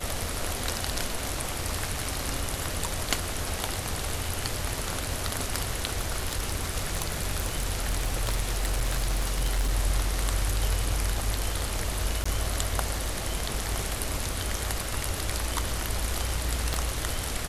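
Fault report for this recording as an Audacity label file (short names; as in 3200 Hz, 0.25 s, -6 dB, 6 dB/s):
5.870000	9.730000	clipped -21 dBFS
12.240000	12.260000	gap 15 ms
16.740000	16.740000	pop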